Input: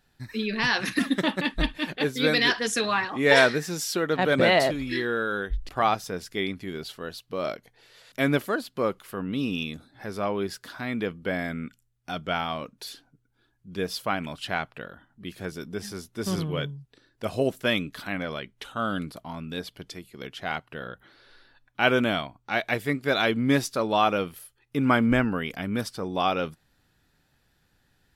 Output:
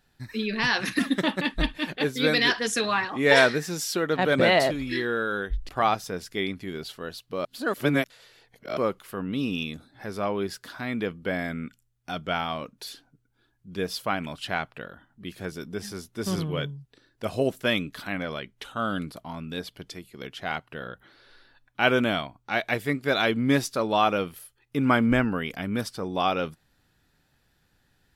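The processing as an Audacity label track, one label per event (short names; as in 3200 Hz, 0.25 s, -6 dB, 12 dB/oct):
7.450000	8.770000	reverse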